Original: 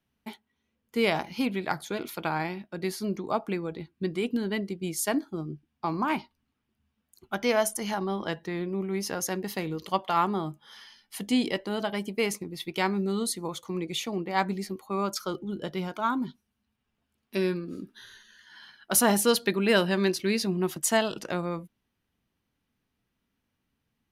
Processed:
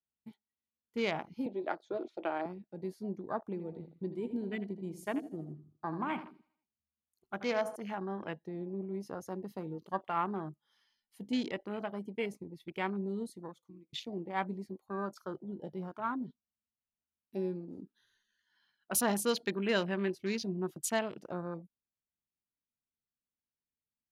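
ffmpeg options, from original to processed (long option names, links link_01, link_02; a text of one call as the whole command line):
ffmpeg -i in.wav -filter_complex "[0:a]asettb=1/sr,asplit=3[link_01][link_02][link_03];[link_01]atrim=end=1.464[link_04];[link_02]atrim=start=1.46:end=2.46,asetpts=PTS-STARTPTS,afade=type=in:duration=0.004:curve=qsin,afade=type=out:start_time=0.996:duration=0.004:curve=qsin,highpass=frequency=250:width=0.5412,highpass=frequency=250:width=1.3066,equalizer=frequency=350:width_type=q:width=4:gain=7,equalizer=frequency=610:width_type=q:width=4:gain=10,equalizer=frequency=1000:width_type=q:width=4:gain=-3,equalizer=frequency=2100:width_type=q:width=4:gain=-3,equalizer=frequency=3800:width_type=q:width=4:gain=5,lowpass=frequency=6500:width=0.5412,lowpass=frequency=6500:width=1.3066[link_05];[link_03]atrim=start=2.456[link_06];[link_04][link_05]acrossfade=duration=0.004:curve1=hsin:curve2=qsin[link_07];[link_07][link_06]acrossfade=duration=0.004:curve1=qsin:curve2=hsin,asettb=1/sr,asplit=3[link_08][link_09][link_10];[link_08]atrim=end=3.434[link_11];[link_09]atrim=start=3.43:end=7.76,asetpts=PTS-STARTPTS,afade=type=in:duration=0.004:curve=qsin,afade=type=out:start_time=4.326:duration=0.004:curve=qsin,aecho=1:1:80|160|240|320|400|480:0.282|0.147|0.0762|0.0396|0.0206|0.0107,atrim=end_sample=190953[link_12];[link_10]atrim=start=7.756[link_13];[link_11][link_12]acrossfade=duration=0.004:curve1=hsin:curve2=qsin[link_14];[link_14][link_13]acrossfade=duration=0.004:curve1=qsin:curve2=hsin,asplit=2[link_15][link_16];[link_15]atrim=end=13.93,asetpts=PTS-STARTPTS,afade=type=out:start_time=13.27:duration=0.66[link_17];[link_16]atrim=start=13.93,asetpts=PTS-STARTPTS,afade=type=in:duration=0.004:curve=hsin[link_18];[link_17][link_18]concat=n=2:v=0:a=1,afwtdn=0.0178,volume=-8dB" out.wav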